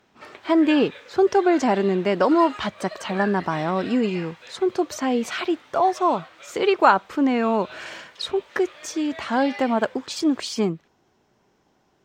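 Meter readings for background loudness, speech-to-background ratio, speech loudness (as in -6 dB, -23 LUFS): -40.0 LUFS, 17.5 dB, -22.5 LUFS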